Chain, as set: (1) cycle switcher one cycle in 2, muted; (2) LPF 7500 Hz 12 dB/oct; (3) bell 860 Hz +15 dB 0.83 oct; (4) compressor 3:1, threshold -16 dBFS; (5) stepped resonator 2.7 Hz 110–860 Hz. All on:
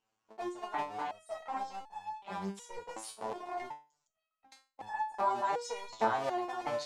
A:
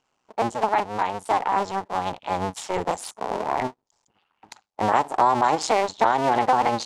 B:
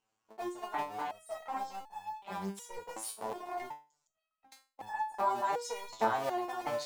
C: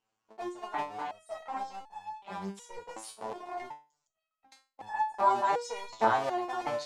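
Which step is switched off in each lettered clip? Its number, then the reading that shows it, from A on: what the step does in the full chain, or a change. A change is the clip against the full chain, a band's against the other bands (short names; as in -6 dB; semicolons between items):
5, momentary loudness spread change -4 LU; 2, 8 kHz band +4.0 dB; 4, crest factor change +2.0 dB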